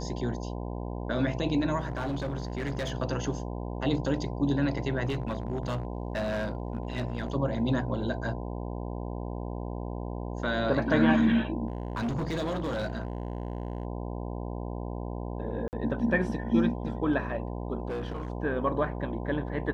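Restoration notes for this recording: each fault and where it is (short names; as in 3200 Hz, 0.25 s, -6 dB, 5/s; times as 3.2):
buzz 60 Hz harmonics 17 -35 dBFS
1.79–2.92 clipped -27.5 dBFS
5.05–7.34 clipped -26 dBFS
11.68–13.85 clipped -27 dBFS
15.68–15.73 gap 49 ms
17.88–18.28 clipped -29.5 dBFS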